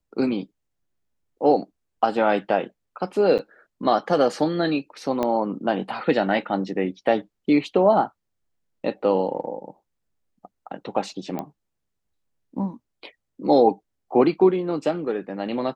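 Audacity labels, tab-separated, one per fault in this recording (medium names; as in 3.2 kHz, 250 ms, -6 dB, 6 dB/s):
3.380000	3.390000	dropout 7.7 ms
5.230000	5.230000	pop -12 dBFS
11.390000	11.390000	pop -17 dBFS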